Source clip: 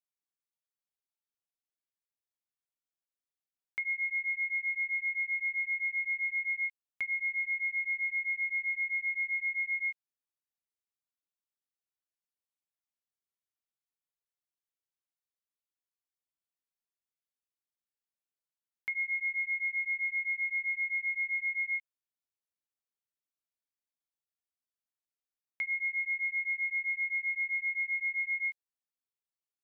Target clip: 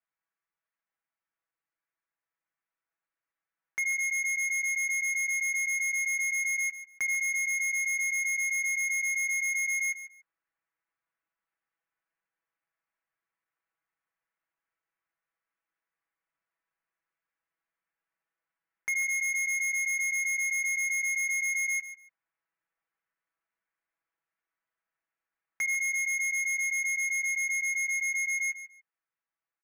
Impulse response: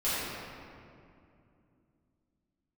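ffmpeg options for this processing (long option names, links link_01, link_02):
-filter_complex "[0:a]lowpass=frequency=2200:width=0.5412,lowpass=frequency=2200:width=1.3066,equalizer=frequency=1700:width=0.46:gain=13,aecho=1:1:6.1:0.95,dynaudnorm=framelen=780:gausssize=11:maxgain=3.5dB,asoftclip=type=hard:threshold=-23.5dB,asplit=2[link_01][link_02];[link_02]aecho=0:1:144|288:0.224|0.0425[link_03];[link_01][link_03]amix=inputs=2:normalize=0,volume=-4dB"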